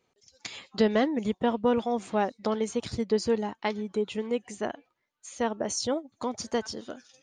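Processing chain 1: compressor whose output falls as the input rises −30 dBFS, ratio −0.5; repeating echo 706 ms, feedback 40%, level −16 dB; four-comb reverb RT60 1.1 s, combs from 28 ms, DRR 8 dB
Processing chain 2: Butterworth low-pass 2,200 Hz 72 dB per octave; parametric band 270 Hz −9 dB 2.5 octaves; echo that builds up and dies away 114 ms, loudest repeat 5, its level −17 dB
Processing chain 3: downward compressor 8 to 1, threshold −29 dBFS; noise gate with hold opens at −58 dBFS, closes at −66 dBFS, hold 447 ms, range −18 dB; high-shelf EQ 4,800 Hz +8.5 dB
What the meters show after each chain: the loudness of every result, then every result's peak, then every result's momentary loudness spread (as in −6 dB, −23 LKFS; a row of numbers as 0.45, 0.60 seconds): −32.5, −35.0, −34.5 LKFS; −12.0, −17.0, −13.5 dBFS; 8, 13, 8 LU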